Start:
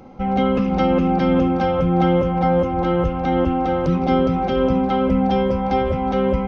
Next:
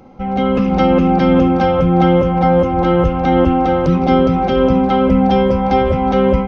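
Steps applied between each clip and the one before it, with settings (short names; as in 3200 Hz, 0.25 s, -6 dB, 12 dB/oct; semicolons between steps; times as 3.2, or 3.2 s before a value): AGC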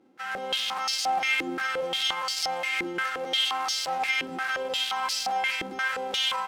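spectral whitening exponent 0.1; limiter -6 dBFS, peak gain reduction 7.5 dB; stepped band-pass 5.7 Hz 330–4900 Hz; gain -2 dB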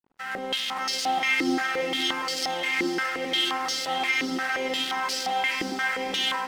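small resonant body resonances 270/1900 Hz, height 11 dB, ringing for 25 ms; crossover distortion -48.5 dBFS; diffused feedback echo 0.531 s, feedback 43%, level -9 dB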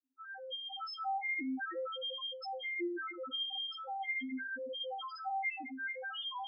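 reverb RT60 0.50 s, pre-delay 0.154 s, DRR 5.5 dB; loudest bins only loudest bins 1; flange 0.43 Hz, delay 6.9 ms, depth 4.3 ms, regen +76%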